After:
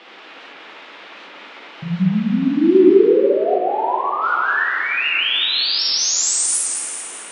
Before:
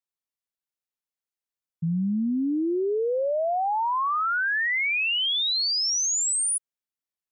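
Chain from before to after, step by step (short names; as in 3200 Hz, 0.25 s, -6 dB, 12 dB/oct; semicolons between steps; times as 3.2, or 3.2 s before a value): bell 380 Hz +12.5 dB 0.3 oct; notch 2100 Hz, Q 5.8; band noise 250–3300 Hz -46 dBFS; 2.94–4.22 tape spacing loss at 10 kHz 28 dB; thin delay 0.217 s, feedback 51%, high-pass 1400 Hz, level -8 dB; plate-style reverb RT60 2.5 s, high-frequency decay 0.65×, DRR -5.5 dB; record warp 78 rpm, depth 100 cents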